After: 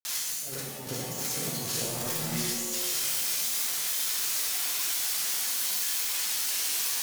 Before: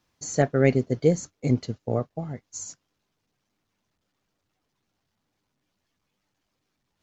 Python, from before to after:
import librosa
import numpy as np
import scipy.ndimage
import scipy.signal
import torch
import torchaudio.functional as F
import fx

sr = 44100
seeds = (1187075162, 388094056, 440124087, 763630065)

y = x + 0.5 * 10.0 ** (-16.5 / 20.0) * np.diff(np.sign(x), prepend=np.sign(x[:1]))
y = fx.hum_notches(y, sr, base_hz=50, count=3)
y = fx.granulator(y, sr, seeds[0], grain_ms=100.0, per_s=20.0, spray_ms=100.0, spread_st=0)
y = fx.echo_feedback(y, sr, ms=364, feedback_pct=57, wet_db=-18.5)
y = fx.over_compress(y, sr, threshold_db=-29.0, ratio=-0.5)
y = fx.rev_shimmer(y, sr, seeds[1], rt60_s=1.0, semitones=7, shimmer_db=-2, drr_db=-2.5)
y = F.gain(torch.from_numpy(y), -7.0).numpy()